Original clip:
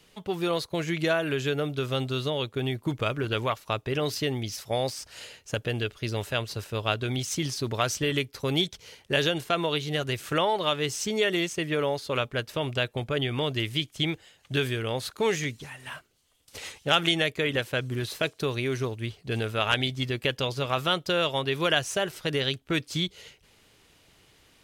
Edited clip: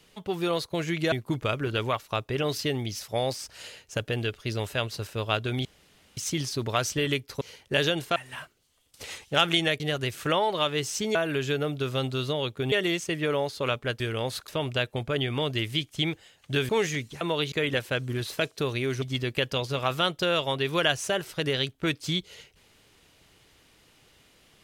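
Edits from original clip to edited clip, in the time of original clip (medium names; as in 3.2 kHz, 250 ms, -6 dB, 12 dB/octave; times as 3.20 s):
1.12–2.69 s: move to 11.21 s
7.22 s: insert room tone 0.52 s
8.46–8.80 s: delete
9.55–9.86 s: swap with 15.70–17.34 s
14.70–15.18 s: move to 12.49 s
18.84–19.89 s: delete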